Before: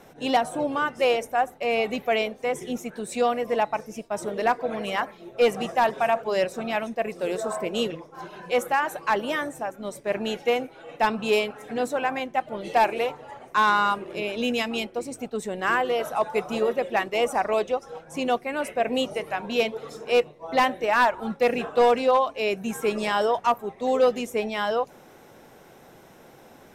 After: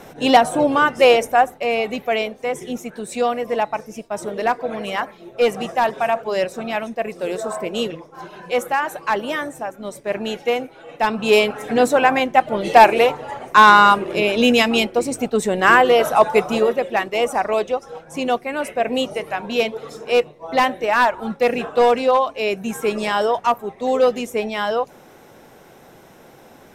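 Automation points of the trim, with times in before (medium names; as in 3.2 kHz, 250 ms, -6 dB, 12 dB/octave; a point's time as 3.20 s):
1.32 s +9.5 dB
1.79 s +3 dB
11.04 s +3 dB
11.53 s +11 dB
16.27 s +11 dB
16.87 s +4 dB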